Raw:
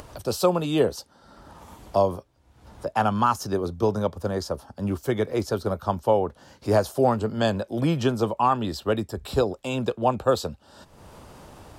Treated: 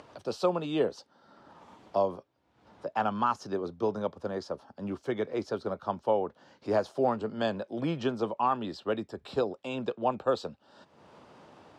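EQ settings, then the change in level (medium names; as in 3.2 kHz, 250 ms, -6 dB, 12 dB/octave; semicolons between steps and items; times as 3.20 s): band-pass 180–4300 Hz; -6.0 dB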